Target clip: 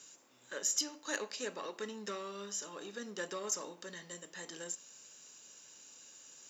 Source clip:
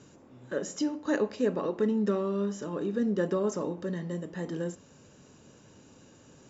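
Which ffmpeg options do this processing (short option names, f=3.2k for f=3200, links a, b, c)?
-af "aeval=exprs='0.188*(cos(1*acos(clip(val(0)/0.188,-1,1)))-cos(1*PI/2))+0.00422*(cos(8*acos(clip(val(0)/0.188,-1,1)))-cos(8*PI/2))':c=same,aderivative,volume=10dB"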